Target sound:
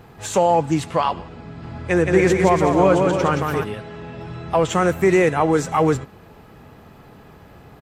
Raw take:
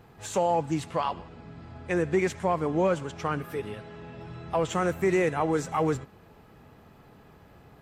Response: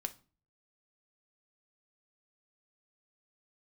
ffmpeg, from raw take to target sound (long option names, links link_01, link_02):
-filter_complex "[0:a]asplit=3[link_01][link_02][link_03];[link_01]afade=type=out:start_time=1.62:duration=0.02[link_04];[link_02]aecho=1:1:170|289|372.3|430.6|471.4:0.631|0.398|0.251|0.158|0.1,afade=type=in:start_time=1.62:duration=0.02,afade=type=out:start_time=3.63:duration=0.02[link_05];[link_03]afade=type=in:start_time=3.63:duration=0.02[link_06];[link_04][link_05][link_06]amix=inputs=3:normalize=0,volume=8.5dB"